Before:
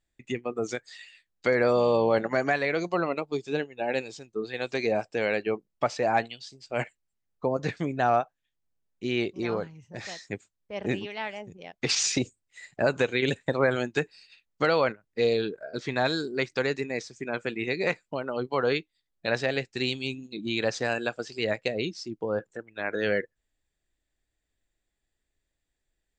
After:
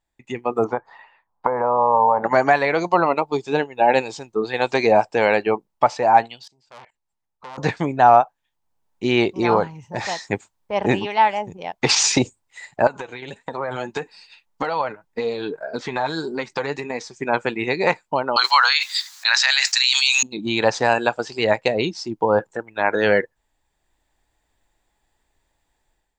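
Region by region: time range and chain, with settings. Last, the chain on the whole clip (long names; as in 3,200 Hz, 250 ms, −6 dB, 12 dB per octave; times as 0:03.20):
0:00.64–0:02.24: notch filter 340 Hz, Q 6.9 + downward compressor, threshold −29 dBFS + low-pass with resonance 990 Hz, resonance Q 3.2
0:06.43–0:07.58: treble cut that deepens with the level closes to 1,900 Hz, closed at −23 dBFS + output level in coarse steps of 22 dB + saturating transformer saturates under 3,400 Hz
0:12.87–0:17.22: downward compressor 10 to 1, threshold −29 dBFS + flanger 1.7 Hz, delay 3.7 ms, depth 3.4 ms, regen +45%
0:18.36–0:20.23: high-pass filter 1,400 Hz 24 dB per octave + flat-topped bell 5,400 Hz +9.5 dB 1.1 octaves + envelope flattener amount 100%
whole clip: parametric band 900 Hz +14.5 dB 0.62 octaves; automatic gain control gain up to 11.5 dB; level −1 dB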